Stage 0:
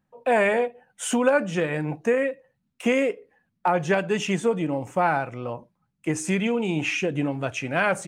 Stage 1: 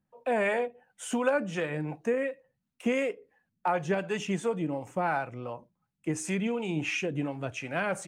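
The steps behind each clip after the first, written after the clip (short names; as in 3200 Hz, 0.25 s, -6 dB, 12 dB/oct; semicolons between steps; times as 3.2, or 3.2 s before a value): harmonic tremolo 2.8 Hz, depth 50%, crossover 500 Hz; gain -4 dB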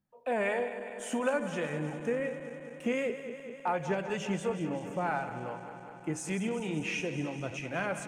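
regenerating reverse delay 0.1 s, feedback 85%, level -12 dB; gain -3.5 dB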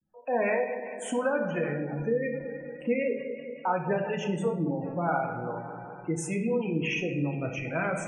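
spectral gate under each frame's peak -20 dB strong; vibrato 0.35 Hz 52 cents; shoebox room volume 180 m³, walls mixed, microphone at 0.58 m; gain +2.5 dB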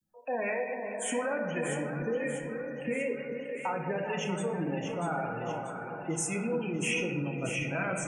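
limiter -21 dBFS, peak gain reduction 6 dB; high shelf 2700 Hz +9.5 dB; on a send: split-band echo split 1100 Hz, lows 0.442 s, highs 0.639 s, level -6.5 dB; on the sum: gain -3.5 dB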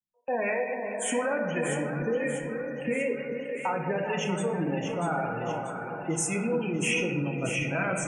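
gate with hold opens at -31 dBFS; gain +3.5 dB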